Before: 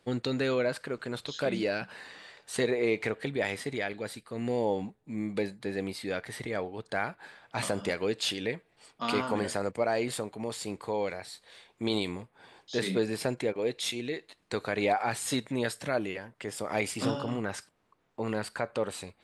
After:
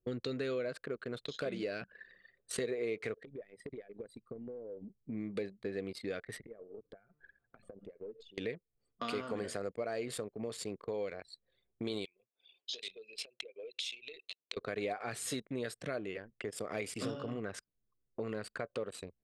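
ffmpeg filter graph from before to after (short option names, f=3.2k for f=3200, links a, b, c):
-filter_complex "[0:a]asettb=1/sr,asplit=3[a][b][c];[a]atrim=end=3.224[d];[b]atrim=start=3.22:end=4.97,asetpts=PTS-STARTPTS,afade=t=in:d=0.004:c=qsin,afade=t=out:st=1.746:d=0.004:c=qsin,highshelf=f=6.3k:g=6,acompressor=threshold=-41dB:ratio=16:attack=3.2:release=140:knee=1:detection=peak[e];[c]atrim=start=4.966[f];[d][e]acrossfade=d=0.004:c1=hsin:c2=qsin[g];[g][f]acrossfade=d=0.004:c1=qsin:c2=hsin,asettb=1/sr,asplit=3[h][i][j];[h]atrim=end=6.384[k];[i]atrim=start=6.38:end=8.38,asetpts=PTS-STARTPTS,afade=t=in:d=0.004:c=qsin,afade=t=out:st=1.996:d=0.004:c=qsin,bandreject=f=149.6:t=h:w=4,bandreject=f=299.2:t=h:w=4,bandreject=f=448.8:t=h:w=4,bandreject=f=598.4:t=h:w=4,bandreject=f=748:t=h:w=4,bandreject=f=897.6:t=h:w=4,bandreject=f=1.0472k:t=h:w=4,bandreject=f=1.1968k:t=h:w=4,bandreject=f=1.3464k:t=h:w=4,bandreject=f=1.496k:t=h:w=4,bandreject=f=1.6456k:t=h:w=4,bandreject=f=1.7952k:t=h:w=4,bandreject=f=1.9448k:t=h:w=4,bandreject=f=2.0944k:t=h:w=4,bandreject=f=2.244k:t=h:w=4,bandreject=f=2.3936k:t=h:w=4,bandreject=f=2.5432k:t=h:w=4,bandreject=f=2.6928k:t=h:w=4,bandreject=f=2.8424k:t=h:w=4,bandreject=f=2.992k:t=h:w=4,bandreject=f=3.1416k:t=h:w=4,bandreject=f=3.2912k:t=h:w=4,bandreject=f=3.4408k:t=h:w=4,bandreject=f=3.5904k:t=h:w=4,bandreject=f=3.74k:t=h:w=4,bandreject=f=3.8896k:t=h:w=4,bandreject=f=4.0392k:t=h:w=4,bandreject=f=4.1888k:t=h:w=4,bandreject=f=4.3384k:t=h:w=4,bandreject=f=4.488k:t=h:w=4,bandreject=f=4.6376k:t=h:w=4,acompressor=threshold=-42dB:ratio=16:attack=3.2:release=140:knee=1:detection=peak,aeval=exprs='(tanh(56.2*val(0)+0.4)-tanh(0.4))/56.2':c=same[l];[j]atrim=start=8.376[m];[k][l]acrossfade=d=0.004:c1=hsin:c2=qsin[n];[n][m]acrossfade=d=0.004:c1=qsin:c2=hsin,asettb=1/sr,asplit=3[o][p][q];[o]atrim=end=12.054[r];[p]atrim=start=12.05:end=14.57,asetpts=PTS-STARTPTS,afade=t=in:d=0.004:c=qsin,afade=t=out:st=2.516:d=0.004:c=qsin,acompressor=threshold=-40dB:ratio=12:attack=3.2:release=140:knee=1:detection=peak,highpass=560,lowpass=6.8k,highshelf=f=2.1k:t=q:w=3:g=7.5[s];[q]atrim=start=14.566[t];[r][s]acrossfade=d=0.004:c1=hsin:c2=qsin[u];[u][t]acrossfade=d=0.004:c1=qsin:c2=hsin,superequalizer=7b=1.58:9b=0.398,anlmdn=0.398,acompressor=threshold=-44dB:ratio=2.5,volume=3dB"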